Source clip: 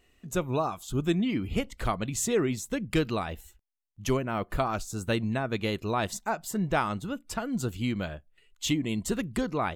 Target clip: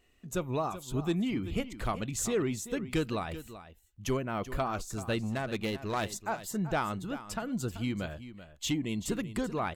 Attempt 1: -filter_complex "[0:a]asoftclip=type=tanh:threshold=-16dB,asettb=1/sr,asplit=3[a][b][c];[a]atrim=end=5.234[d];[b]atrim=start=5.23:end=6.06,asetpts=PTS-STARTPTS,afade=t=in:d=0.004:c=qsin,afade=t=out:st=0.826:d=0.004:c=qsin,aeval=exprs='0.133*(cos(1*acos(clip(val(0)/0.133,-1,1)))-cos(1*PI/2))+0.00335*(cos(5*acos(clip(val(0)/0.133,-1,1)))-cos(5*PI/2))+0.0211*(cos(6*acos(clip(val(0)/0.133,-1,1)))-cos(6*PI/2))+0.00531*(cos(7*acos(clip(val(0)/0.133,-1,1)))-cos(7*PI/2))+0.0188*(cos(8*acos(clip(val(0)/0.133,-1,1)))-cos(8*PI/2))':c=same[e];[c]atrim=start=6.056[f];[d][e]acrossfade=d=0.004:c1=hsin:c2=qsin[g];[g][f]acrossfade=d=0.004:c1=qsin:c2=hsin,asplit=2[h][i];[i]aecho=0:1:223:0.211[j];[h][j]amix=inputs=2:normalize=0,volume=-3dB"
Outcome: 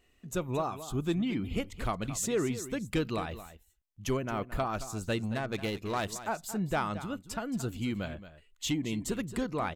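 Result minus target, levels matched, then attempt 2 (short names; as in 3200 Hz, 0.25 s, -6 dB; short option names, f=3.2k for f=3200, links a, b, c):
echo 0.161 s early
-filter_complex "[0:a]asoftclip=type=tanh:threshold=-16dB,asettb=1/sr,asplit=3[a][b][c];[a]atrim=end=5.234[d];[b]atrim=start=5.23:end=6.06,asetpts=PTS-STARTPTS,afade=t=in:d=0.004:c=qsin,afade=t=out:st=0.826:d=0.004:c=qsin,aeval=exprs='0.133*(cos(1*acos(clip(val(0)/0.133,-1,1)))-cos(1*PI/2))+0.00335*(cos(5*acos(clip(val(0)/0.133,-1,1)))-cos(5*PI/2))+0.0211*(cos(6*acos(clip(val(0)/0.133,-1,1)))-cos(6*PI/2))+0.00531*(cos(7*acos(clip(val(0)/0.133,-1,1)))-cos(7*PI/2))+0.0188*(cos(8*acos(clip(val(0)/0.133,-1,1)))-cos(8*PI/2))':c=same[e];[c]atrim=start=6.056[f];[d][e]acrossfade=d=0.004:c1=hsin:c2=qsin[g];[g][f]acrossfade=d=0.004:c1=qsin:c2=hsin,asplit=2[h][i];[i]aecho=0:1:384:0.211[j];[h][j]amix=inputs=2:normalize=0,volume=-3dB"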